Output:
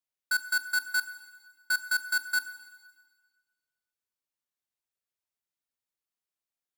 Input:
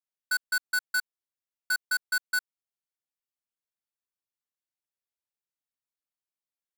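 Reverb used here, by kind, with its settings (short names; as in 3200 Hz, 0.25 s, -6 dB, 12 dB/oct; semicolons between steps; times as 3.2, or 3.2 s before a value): Schroeder reverb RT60 1.5 s, combs from 25 ms, DRR 12 dB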